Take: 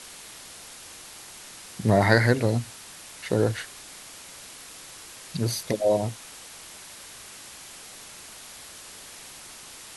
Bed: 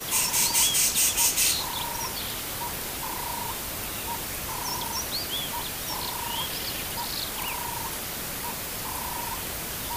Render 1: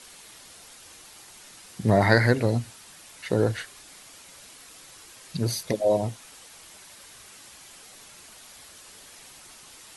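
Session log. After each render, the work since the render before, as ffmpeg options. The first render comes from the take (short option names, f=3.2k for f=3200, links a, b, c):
-af "afftdn=nr=6:nf=-45"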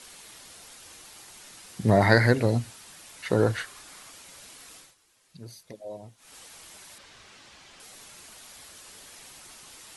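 -filter_complex "[0:a]asettb=1/sr,asplit=3[a][b][c];[a]atrim=end=3.254[d];[b]atrim=start=3.25:end=4.11,asetpts=PTS-STARTPTS,afade=t=in:d=0.004:c=qsin,afade=t=out:st=0.856:d=0.004:c=qsin,equalizer=f=1.2k:w=1.5:g=5.5[e];[c]atrim=start=4.106[f];[d][e]acrossfade=d=0.004:c1=hsin:c2=qsin[g];[g][f]acrossfade=d=0.004:c1=qsin:c2=hsin,asettb=1/sr,asplit=3[h][i][j];[h]atrim=end=6.984[k];[i]atrim=start=6.98:end=7.8,asetpts=PTS-STARTPTS,afade=t=in:d=0.004:c=qsin,afade=t=out:st=0.816:d=0.004:c=qsin,lowpass=4.9k[l];[j]atrim=start=7.796[m];[k][l]acrossfade=d=0.004:c1=hsin:c2=qsin[n];[n][m]acrossfade=d=0.004:c1=qsin:c2=hsin,asplit=3[o][p][q];[o]atrim=end=4.95,asetpts=PTS-STARTPTS,afade=t=out:st=4.75:d=0.2:silence=0.133352[r];[p]atrim=start=4.95:end=6.17,asetpts=PTS-STARTPTS,volume=-17.5dB[s];[q]atrim=start=6.17,asetpts=PTS-STARTPTS,afade=t=in:d=0.2:silence=0.133352[t];[r][s][t]concat=n=3:v=0:a=1"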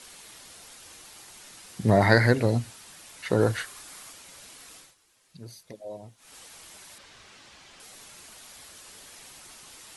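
-filter_complex "[0:a]asettb=1/sr,asplit=3[a][b][c];[a]atrim=end=3.414[d];[b]atrim=start=3.41:end=4.13,asetpts=PTS-STARTPTS,afade=t=in:d=0.004:c=qsin,afade=t=out:st=0.716:d=0.004:c=qsin,highshelf=f=8.6k:g=7[e];[c]atrim=start=4.126[f];[d][e]acrossfade=d=0.004:c1=hsin:c2=qsin[g];[g][f]acrossfade=d=0.004:c1=qsin:c2=hsin"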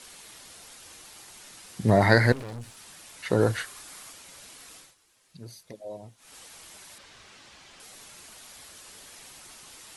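-filter_complex "[0:a]asettb=1/sr,asplit=3[a][b][c];[a]atrim=end=2.324[d];[b]atrim=start=2.32:end=2.77,asetpts=PTS-STARTPTS,afade=t=in:d=0.004:c=qsin,afade=t=out:st=0.446:d=0.004:c=qsin,aeval=exprs='(tanh(63.1*val(0)+0.5)-tanh(0.5))/63.1':c=same[e];[c]atrim=start=2.766[f];[d][e]acrossfade=d=0.004:c1=hsin:c2=qsin[g];[g][f]acrossfade=d=0.004:c1=qsin:c2=hsin"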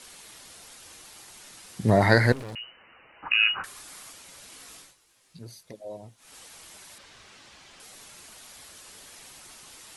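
-filter_complex "[0:a]asettb=1/sr,asplit=3[a][b][c];[a]atrim=end=2.554[d];[b]atrim=start=2.55:end=3.64,asetpts=PTS-STARTPTS,afade=t=in:d=0.004:c=qsin,afade=t=out:st=1.086:d=0.004:c=qsin,lowpass=f=2.6k:t=q:w=0.5098,lowpass=f=2.6k:t=q:w=0.6013,lowpass=f=2.6k:t=q:w=0.9,lowpass=f=2.6k:t=q:w=2.563,afreqshift=-3000[e];[c]atrim=start=3.636[f];[d][e]acrossfade=d=0.004:c1=hsin:c2=qsin[g];[g][f]acrossfade=d=0.004:c1=qsin:c2=hsin,asettb=1/sr,asplit=3[h][i][j];[h]atrim=end=4.504[k];[i]atrim=start=4.5:end=5.42,asetpts=PTS-STARTPTS,afade=t=in:d=0.004:c=qsin,afade=t=out:st=0.916:d=0.004:c=qsin,asplit=2[l][m];[m]adelay=18,volume=-5dB[n];[l][n]amix=inputs=2:normalize=0,atrim=end_sample=40572[o];[j]atrim=start=5.416[p];[k][o]acrossfade=d=0.004:c1=hsin:c2=qsin[q];[q][p]acrossfade=d=0.004:c1=qsin:c2=hsin"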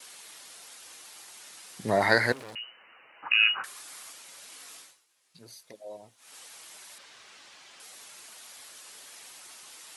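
-af "agate=range=-33dB:threshold=-58dB:ratio=3:detection=peak,highpass=f=600:p=1"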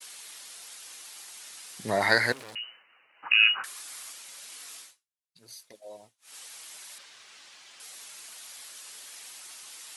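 -af "tiltshelf=f=1.4k:g=-3.5,agate=range=-33dB:threshold=-48dB:ratio=3:detection=peak"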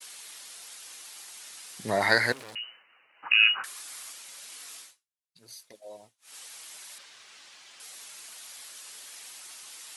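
-af anull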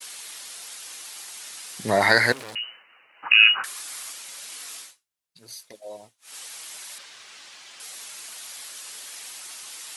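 -af "volume=6dB,alimiter=limit=-3dB:level=0:latency=1"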